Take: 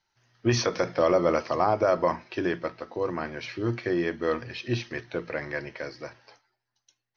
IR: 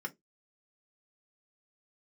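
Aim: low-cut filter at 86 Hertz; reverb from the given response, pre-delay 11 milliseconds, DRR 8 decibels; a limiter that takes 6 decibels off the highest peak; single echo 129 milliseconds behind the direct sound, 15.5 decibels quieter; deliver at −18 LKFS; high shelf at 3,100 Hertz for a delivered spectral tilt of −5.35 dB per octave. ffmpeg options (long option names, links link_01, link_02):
-filter_complex "[0:a]highpass=86,highshelf=frequency=3100:gain=-7.5,alimiter=limit=-17dB:level=0:latency=1,aecho=1:1:129:0.168,asplit=2[link_01][link_02];[1:a]atrim=start_sample=2205,adelay=11[link_03];[link_02][link_03]afir=irnorm=-1:irlink=0,volume=-9dB[link_04];[link_01][link_04]amix=inputs=2:normalize=0,volume=11.5dB"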